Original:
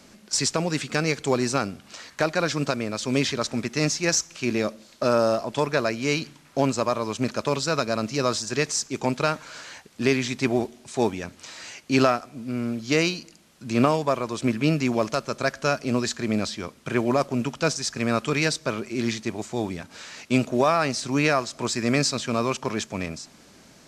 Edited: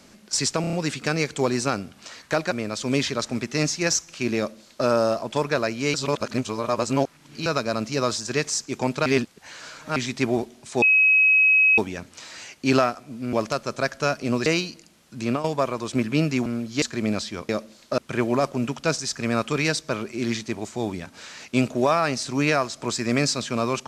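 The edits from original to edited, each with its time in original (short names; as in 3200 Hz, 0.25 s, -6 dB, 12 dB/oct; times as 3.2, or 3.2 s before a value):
0.61 stutter 0.03 s, 5 plays
2.39–2.73 cut
4.59–5.08 copy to 16.75
6.16–7.68 reverse
9.28–10.18 reverse
11.04 add tone 2550 Hz -13.5 dBFS 0.96 s
12.59–12.95 swap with 14.95–16.08
13.67–13.93 fade out, to -12.5 dB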